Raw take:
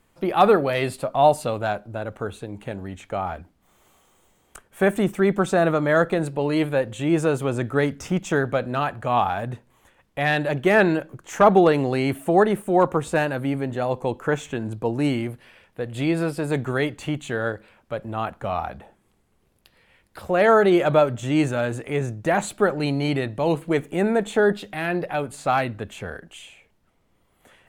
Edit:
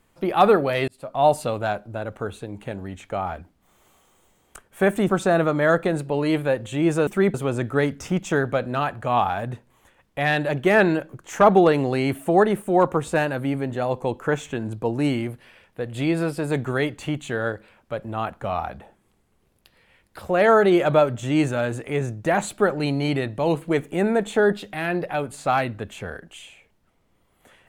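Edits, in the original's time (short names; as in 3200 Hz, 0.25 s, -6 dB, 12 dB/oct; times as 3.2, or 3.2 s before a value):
0.88–1.32 fade in
5.09–5.36 move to 7.34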